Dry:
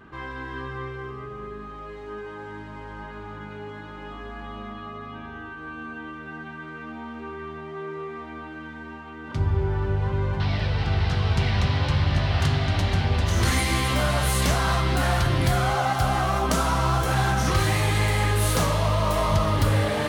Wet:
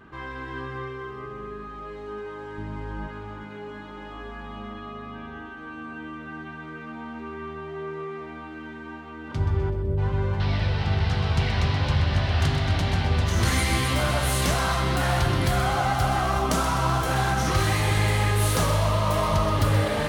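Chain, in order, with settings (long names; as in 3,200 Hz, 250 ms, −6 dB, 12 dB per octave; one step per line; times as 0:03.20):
0:02.58–0:03.08: low-shelf EQ 280 Hz +10 dB
0:09.70–0:09.98: gain on a spectral selection 680–8,300 Hz −26 dB
echo with a time of its own for lows and highs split 500 Hz, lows 356 ms, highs 127 ms, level −9.5 dB
level −1 dB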